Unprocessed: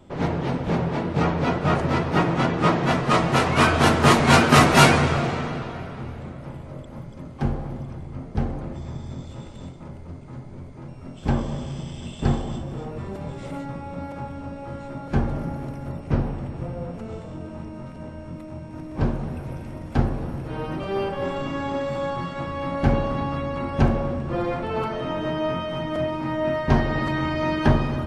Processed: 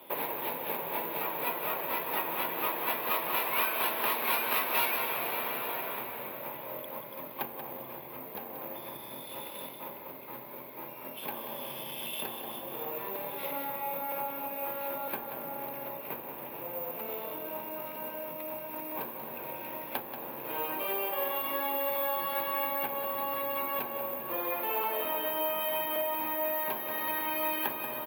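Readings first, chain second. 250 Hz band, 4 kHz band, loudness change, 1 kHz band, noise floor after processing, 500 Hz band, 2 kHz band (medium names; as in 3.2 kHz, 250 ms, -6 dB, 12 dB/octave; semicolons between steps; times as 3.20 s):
-20.0 dB, -9.5 dB, -9.5 dB, -8.5 dB, -44 dBFS, -10.0 dB, -9.5 dB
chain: compression 6:1, threshold -32 dBFS, peak gain reduction 21.5 dB; cabinet simulation 470–4800 Hz, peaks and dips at 740 Hz -9 dB, 1.3 kHz -9 dB, 2.5 kHz +8 dB, 3.6 kHz +5 dB; careless resampling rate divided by 3×, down none, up zero stuff; peaking EQ 930 Hz +10.5 dB 1.4 oct; on a send: delay 184 ms -9.5 dB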